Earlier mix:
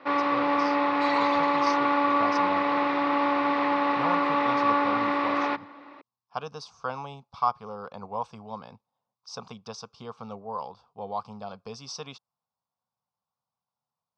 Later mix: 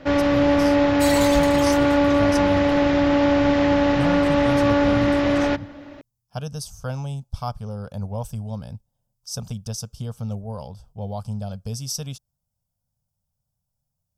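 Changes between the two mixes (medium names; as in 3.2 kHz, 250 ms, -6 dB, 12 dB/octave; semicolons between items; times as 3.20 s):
speech -5.0 dB; second sound: remove distance through air 55 m; master: remove cabinet simulation 490–3800 Hz, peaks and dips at 600 Hz -10 dB, 1.1 kHz +9 dB, 1.6 kHz -7 dB, 3.1 kHz -9 dB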